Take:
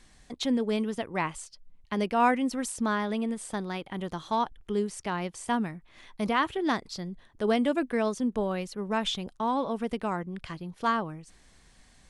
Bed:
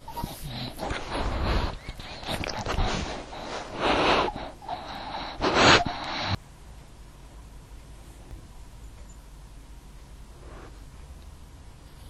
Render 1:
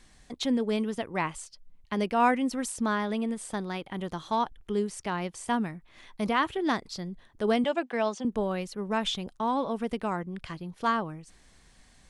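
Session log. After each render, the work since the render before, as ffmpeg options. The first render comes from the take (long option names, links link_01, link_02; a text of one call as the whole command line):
ffmpeg -i in.wav -filter_complex "[0:a]asettb=1/sr,asplit=3[link_01][link_02][link_03];[link_01]atrim=end=7.644[link_04];[link_02]atrim=start=7.64:end=8.25,asetpts=PTS-STARTPTS,afade=type=in:duration=0.004:curve=qsin,afade=type=out:start_time=0.606:duration=0.004:curve=qsin,highpass=frequency=210:width=0.5412,highpass=frequency=210:width=1.3066,equalizer=frequency=280:width_type=q:width=4:gain=-10,equalizer=frequency=430:width_type=q:width=4:gain=-4,equalizer=frequency=780:width_type=q:width=4:gain=8,equalizer=frequency=3000:width_type=q:width=4:gain=5,lowpass=frequency=7400:width=0.5412,lowpass=frequency=7400:width=1.3066[link_05];[link_03]atrim=start=8.246[link_06];[link_04][link_05]acrossfade=duration=0.004:curve1=hsin:curve2=qsin[link_07];[link_07][link_06]acrossfade=duration=0.004:curve1=qsin:curve2=hsin" out.wav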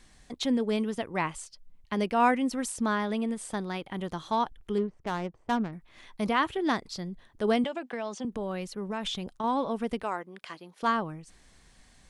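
ffmpeg -i in.wav -filter_complex "[0:a]asettb=1/sr,asplit=3[link_01][link_02][link_03];[link_01]atrim=end=4.784[link_04];[link_02]atrim=start=4.78:end=5.73,asetpts=PTS-STARTPTS,afade=type=in:duration=0.004:curve=qsin,afade=type=out:start_time=0.946:duration=0.004:curve=qsin,adynamicsmooth=sensitivity=3:basefreq=630[link_05];[link_03]atrim=start=5.726[link_06];[link_04][link_05]acrossfade=duration=0.004:curve1=hsin:curve2=qsin[link_07];[link_07][link_06]acrossfade=duration=0.004:curve1=qsin:curve2=hsin,asettb=1/sr,asplit=3[link_08][link_09][link_10];[link_08]atrim=end=7.664[link_11];[link_09]atrim=start=7.66:end=9.44,asetpts=PTS-STARTPTS,afade=type=in:duration=0.004:curve=qsin,afade=type=out:start_time=1.776:duration=0.004:curve=qsin,acompressor=threshold=-29dB:ratio=6:attack=3.2:release=140:knee=1:detection=peak[link_12];[link_10]atrim=start=9.436[link_13];[link_11][link_12]acrossfade=duration=0.004:curve1=hsin:curve2=qsin[link_14];[link_14][link_13]acrossfade=duration=0.004:curve1=qsin:curve2=hsin,asettb=1/sr,asplit=3[link_15][link_16][link_17];[link_15]atrim=end=10.034[link_18];[link_16]atrim=start=10.03:end=10.83,asetpts=PTS-STARTPTS,afade=type=in:duration=0.004:curve=qsin,afade=type=out:start_time=0.796:duration=0.004:curve=qsin,highpass=400[link_19];[link_17]atrim=start=10.826[link_20];[link_18][link_19]acrossfade=duration=0.004:curve1=hsin:curve2=qsin[link_21];[link_21][link_20]acrossfade=duration=0.004:curve1=qsin:curve2=hsin" out.wav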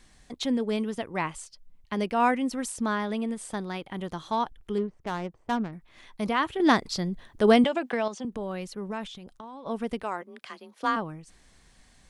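ffmpeg -i in.wav -filter_complex "[0:a]asplit=3[link_01][link_02][link_03];[link_01]afade=type=out:start_time=9.04:duration=0.02[link_04];[link_02]acompressor=threshold=-39dB:ratio=16:attack=3.2:release=140:knee=1:detection=peak,afade=type=in:start_time=9.04:duration=0.02,afade=type=out:start_time=9.65:duration=0.02[link_05];[link_03]afade=type=in:start_time=9.65:duration=0.02[link_06];[link_04][link_05][link_06]amix=inputs=3:normalize=0,asplit=3[link_07][link_08][link_09];[link_07]afade=type=out:start_time=10.21:duration=0.02[link_10];[link_08]afreqshift=32,afade=type=in:start_time=10.21:duration=0.02,afade=type=out:start_time=10.95:duration=0.02[link_11];[link_09]afade=type=in:start_time=10.95:duration=0.02[link_12];[link_10][link_11][link_12]amix=inputs=3:normalize=0,asplit=3[link_13][link_14][link_15];[link_13]atrim=end=6.602[link_16];[link_14]atrim=start=6.598:end=8.082,asetpts=PTS-STARTPTS,volume=7dB[link_17];[link_15]atrim=start=8.078[link_18];[link_16][link_17]acrossfade=duration=0.004:curve1=hsin:curve2=hsin[link_19];[link_19][link_18]acrossfade=duration=0.004:curve1=hsin:curve2=hsin" out.wav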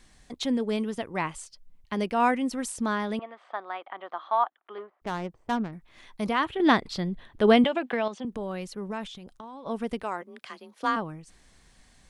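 ffmpeg -i in.wav -filter_complex "[0:a]asettb=1/sr,asplit=3[link_01][link_02][link_03];[link_01]atrim=end=3.194[link_04];[link_02]atrim=start=3.19:end=5.02,asetpts=PTS-STARTPTS,afade=type=in:duration=0.004:curve=qsin,afade=type=out:start_time=1.826:duration=0.004:curve=qsin,highpass=frequency=440:width=0.5412,highpass=frequency=440:width=1.3066,equalizer=frequency=450:width_type=q:width=4:gain=-10,equalizer=frequency=710:width_type=q:width=4:gain=6,equalizer=frequency=1200:width_type=q:width=4:gain=8,equalizer=frequency=2600:width_type=q:width=4:gain=-5,lowpass=frequency=2900:width=0.5412,lowpass=frequency=2900:width=1.3066[link_05];[link_03]atrim=start=5.016[link_06];[link_04][link_05]acrossfade=duration=0.004:curve1=hsin:curve2=qsin[link_07];[link_07][link_06]acrossfade=duration=0.004:curve1=qsin:curve2=hsin,asettb=1/sr,asplit=3[link_08][link_09][link_10];[link_08]atrim=end=6.454[link_11];[link_09]atrim=start=6.45:end=8.27,asetpts=PTS-STARTPTS,afade=type=in:duration=0.004:curve=qsin,afade=type=out:start_time=1.816:duration=0.004:curve=qsin,highshelf=frequency=4400:width_type=q:width=1.5:gain=-6.5[link_12];[link_10]atrim=start=8.266[link_13];[link_11][link_12]acrossfade=duration=0.004:curve1=hsin:curve2=qsin[link_14];[link_14][link_13]acrossfade=duration=0.004:curve1=qsin:curve2=hsin" out.wav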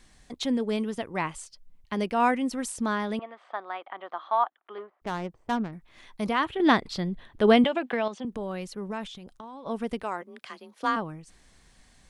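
ffmpeg -i in.wav -af anull out.wav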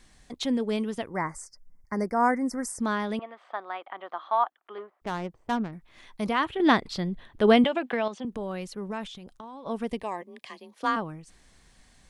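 ffmpeg -i in.wav -filter_complex "[0:a]asettb=1/sr,asplit=3[link_01][link_02][link_03];[link_01]atrim=end=1.094[link_04];[link_02]atrim=start=1.09:end=2.8,asetpts=PTS-STARTPTS,afade=type=in:duration=0.004:curve=qsin,afade=type=out:start_time=1.706:duration=0.004:curve=qsin,asuperstop=centerf=3200:order=12:qfactor=1.2[link_05];[link_03]atrim=start=2.796[link_06];[link_04][link_05]acrossfade=duration=0.004:curve1=hsin:curve2=qsin[link_07];[link_07][link_06]acrossfade=duration=0.004:curve1=qsin:curve2=hsin,asettb=1/sr,asplit=3[link_08][link_09][link_10];[link_08]atrim=end=9.904[link_11];[link_09]atrim=start=9.9:end=10.73,asetpts=PTS-STARTPTS,afade=type=in:duration=0.004:curve=qsin,afade=type=out:start_time=0.826:duration=0.004:curve=qsin,asuperstop=centerf=1400:order=4:qfactor=2.9[link_12];[link_10]atrim=start=10.726[link_13];[link_11][link_12]acrossfade=duration=0.004:curve1=hsin:curve2=qsin[link_14];[link_14][link_13]acrossfade=duration=0.004:curve1=qsin:curve2=hsin" out.wav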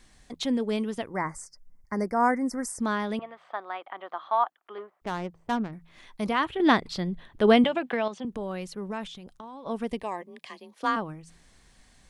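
ffmpeg -i in.wav -af "bandreject=frequency=83.22:width_type=h:width=4,bandreject=frequency=166.44:width_type=h:width=4" out.wav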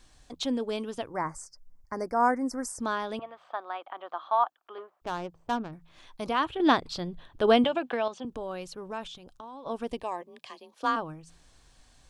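ffmpeg -i in.wav -af "equalizer=frequency=200:width_type=o:width=0.33:gain=-12,equalizer=frequency=400:width_type=o:width=0.33:gain=-3,equalizer=frequency=2000:width_type=o:width=0.33:gain=-9,equalizer=frequency=10000:width_type=o:width=0.33:gain=-5" out.wav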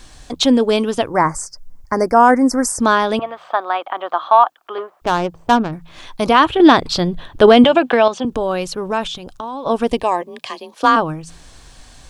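ffmpeg -i in.wav -af "acontrast=52,alimiter=level_in=10.5dB:limit=-1dB:release=50:level=0:latency=1" out.wav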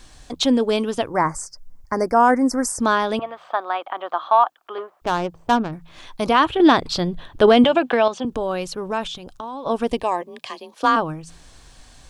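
ffmpeg -i in.wav -af "volume=-4.5dB" out.wav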